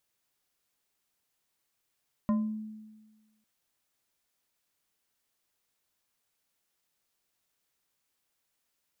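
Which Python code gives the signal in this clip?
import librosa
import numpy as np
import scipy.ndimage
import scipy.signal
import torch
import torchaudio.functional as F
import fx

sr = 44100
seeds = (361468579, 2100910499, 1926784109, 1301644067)

y = fx.fm2(sr, length_s=1.15, level_db=-22, carrier_hz=216.0, ratio=3.77, index=0.52, index_s=0.46, decay_s=1.34, shape='exponential')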